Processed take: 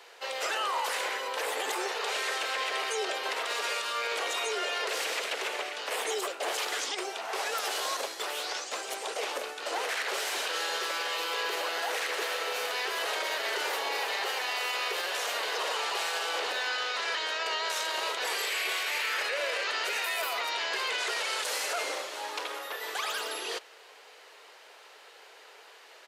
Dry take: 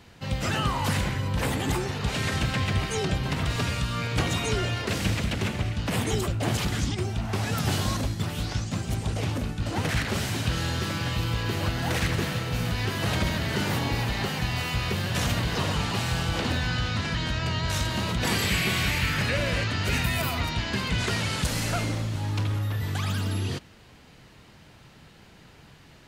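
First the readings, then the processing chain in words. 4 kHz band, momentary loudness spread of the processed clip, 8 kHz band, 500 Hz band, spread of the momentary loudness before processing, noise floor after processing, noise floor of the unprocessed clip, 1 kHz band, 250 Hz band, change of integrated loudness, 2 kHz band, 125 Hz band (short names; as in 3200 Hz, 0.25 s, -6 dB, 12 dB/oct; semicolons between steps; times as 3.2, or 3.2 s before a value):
-0.5 dB, 4 LU, -1.0 dB, -1.5 dB, 4 LU, -53 dBFS, -52 dBFS, +0.5 dB, -20.5 dB, -3.5 dB, -0.5 dB, under -40 dB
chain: elliptic high-pass 430 Hz, stop band 70 dB; limiter -26 dBFS, peak gain reduction 9 dB; downsampling 32000 Hz; gain +3.5 dB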